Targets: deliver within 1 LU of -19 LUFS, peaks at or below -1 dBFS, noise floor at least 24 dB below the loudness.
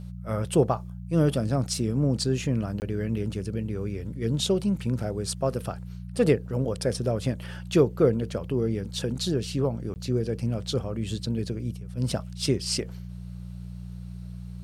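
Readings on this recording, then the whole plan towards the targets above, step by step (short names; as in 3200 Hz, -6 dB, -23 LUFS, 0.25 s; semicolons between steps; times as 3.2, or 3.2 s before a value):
dropouts 2; longest dropout 19 ms; hum 60 Hz; harmonics up to 180 Hz; hum level -35 dBFS; loudness -27.5 LUFS; peak -7.5 dBFS; loudness target -19.0 LUFS
-> interpolate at 2.8/9.94, 19 ms; de-hum 60 Hz, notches 3; gain +8.5 dB; limiter -1 dBFS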